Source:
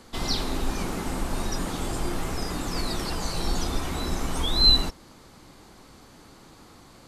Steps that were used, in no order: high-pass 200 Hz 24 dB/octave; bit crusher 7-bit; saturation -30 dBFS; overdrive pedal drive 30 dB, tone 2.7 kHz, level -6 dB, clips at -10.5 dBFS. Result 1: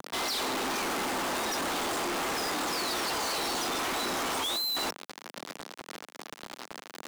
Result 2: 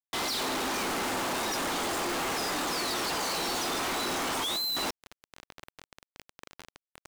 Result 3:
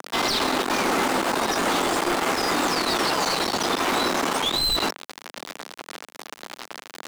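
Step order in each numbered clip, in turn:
bit crusher > overdrive pedal > high-pass > saturation; high-pass > bit crusher > overdrive pedal > saturation; bit crusher > saturation > high-pass > overdrive pedal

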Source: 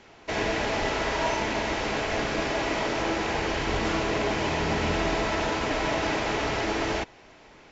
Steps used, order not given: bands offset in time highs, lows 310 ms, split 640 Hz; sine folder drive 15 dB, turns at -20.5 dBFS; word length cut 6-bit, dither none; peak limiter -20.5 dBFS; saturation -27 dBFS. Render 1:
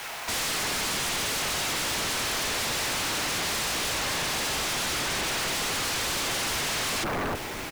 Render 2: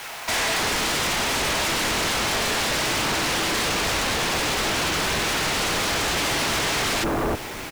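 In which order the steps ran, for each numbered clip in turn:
bands offset in time > peak limiter > sine folder > word length cut > saturation; peak limiter > bands offset in time > saturation > sine folder > word length cut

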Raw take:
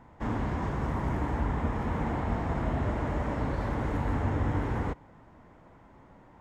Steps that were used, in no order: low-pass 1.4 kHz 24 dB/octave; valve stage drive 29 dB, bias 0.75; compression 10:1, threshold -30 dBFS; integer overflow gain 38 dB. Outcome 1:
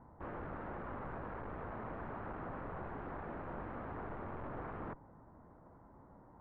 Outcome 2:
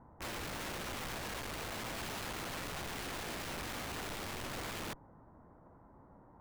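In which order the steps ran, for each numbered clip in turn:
valve stage > compression > integer overflow > low-pass; low-pass > valve stage > compression > integer overflow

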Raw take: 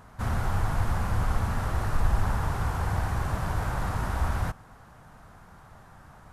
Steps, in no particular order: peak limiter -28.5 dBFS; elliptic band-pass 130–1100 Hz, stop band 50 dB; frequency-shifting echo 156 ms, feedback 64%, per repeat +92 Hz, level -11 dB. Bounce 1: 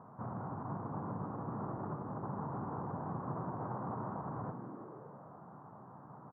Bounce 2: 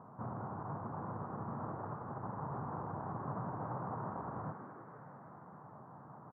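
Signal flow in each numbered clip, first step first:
peak limiter > frequency-shifting echo > elliptic band-pass; peak limiter > elliptic band-pass > frequency-shifting echo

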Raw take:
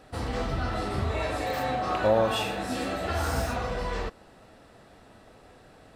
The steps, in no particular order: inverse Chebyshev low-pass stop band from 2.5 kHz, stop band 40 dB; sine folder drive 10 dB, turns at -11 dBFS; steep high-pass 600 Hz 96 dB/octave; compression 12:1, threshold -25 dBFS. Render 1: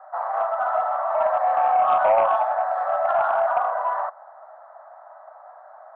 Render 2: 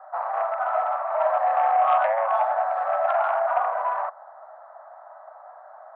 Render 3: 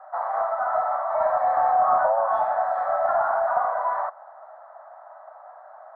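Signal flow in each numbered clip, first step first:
steep high-pass > compression > inverse Chebyshev low-pass > sine folder; inverse Chebyshev low-pass > compression > sine folder > steep high-pass; compression > steep high-pass > sine folder > inverse Chebyshev low-pass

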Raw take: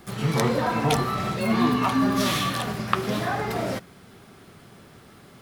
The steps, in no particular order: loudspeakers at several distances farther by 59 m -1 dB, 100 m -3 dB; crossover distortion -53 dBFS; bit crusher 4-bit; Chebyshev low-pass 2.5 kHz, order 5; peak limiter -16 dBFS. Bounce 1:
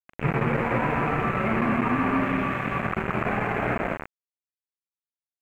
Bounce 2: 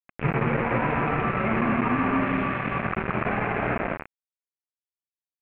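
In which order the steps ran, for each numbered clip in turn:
loudspeakers at several distances > peak limiter > bit crusher > Chebyshev low-pass > crossover distortion; crossover distortion > loudspeakers at several distances > peak limiter > bit crusher > Chebyshev low-pass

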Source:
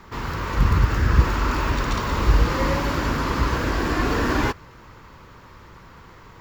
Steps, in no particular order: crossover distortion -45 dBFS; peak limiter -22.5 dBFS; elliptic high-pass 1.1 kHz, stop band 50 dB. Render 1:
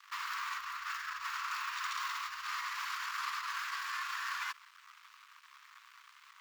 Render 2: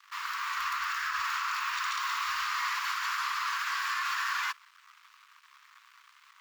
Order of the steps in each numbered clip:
peak limiter > crossover distortion > elliptic high-pass; crossover distortion > elliptic high-pass > peak limiter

